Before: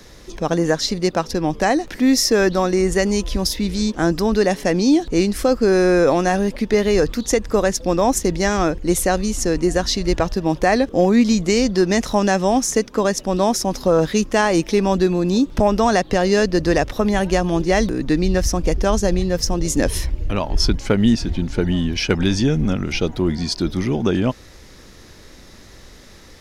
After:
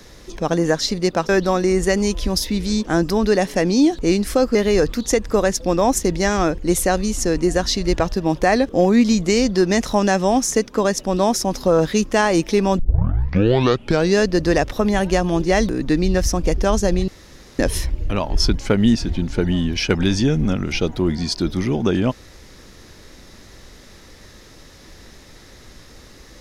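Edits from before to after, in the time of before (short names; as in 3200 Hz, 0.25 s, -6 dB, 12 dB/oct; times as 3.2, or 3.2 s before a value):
1.29–2.38 cut
5.64–6.75 cut
14.99 tape start 1.37 s
19.28–19.79 room tone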